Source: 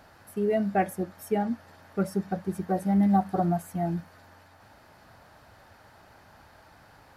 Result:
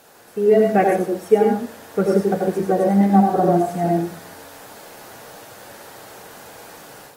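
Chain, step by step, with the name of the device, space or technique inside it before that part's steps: filmed off a television (BPF 170–7800 Hz; bell 460 Hz +12 dB 0.31 oct; reverb RT60 0.40 s, pre-delay 82 ms, DRR 1 dB; white noise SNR 28 dB; AGC gain up to 8 dB; AAC 48 kbps 48000 Hz)

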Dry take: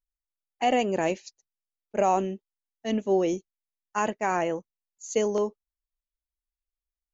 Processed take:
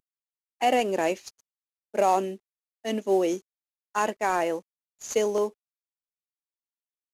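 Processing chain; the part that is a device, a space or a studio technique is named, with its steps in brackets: early wireless headset (HPF 260 Hz 12 dB/oct; CVSD 64 kbps); gain +1.5 dB

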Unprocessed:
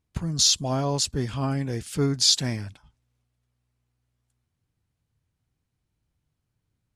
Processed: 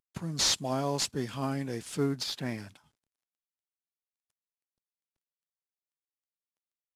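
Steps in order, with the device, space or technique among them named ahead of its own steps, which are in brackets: 1.81–2.58 treble ducked by the level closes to 2200 Hz, closed at -19 dBFS; early wireless headset (HPF 170 Hz 12 dB/oct; CVSD 64 kbps); gain -3.5 dB

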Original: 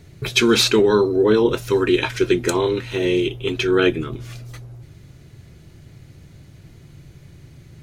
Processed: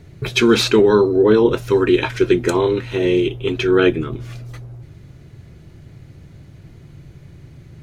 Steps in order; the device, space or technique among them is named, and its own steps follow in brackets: behind a face mask (high shelf 3000 Hz -8 dB); gain +3 dB

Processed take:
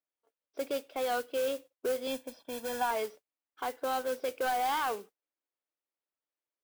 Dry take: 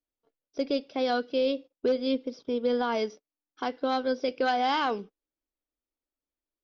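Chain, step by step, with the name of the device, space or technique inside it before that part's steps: carbon microphone (BPF 480–2900 Hz; soft clip -25.5 dBFS, distortion -15 dB; modulation noise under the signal 15 dB); 2.07–2.91 comb 1.2 ms, depth 79%

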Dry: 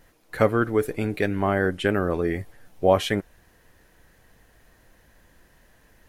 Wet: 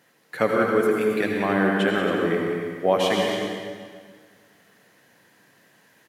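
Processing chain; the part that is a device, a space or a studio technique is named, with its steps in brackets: stadium PA (HPF 140 Hz 24 dB/oct; bell 2900 Hz +4 dB 2.6 oct; loudspeakers at several distances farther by 63 m -9 dB, 93 m -10 dB; reverb RT60 1.8 s, pre-delay 72 ms, DRR 1 dB); gain -3 dB

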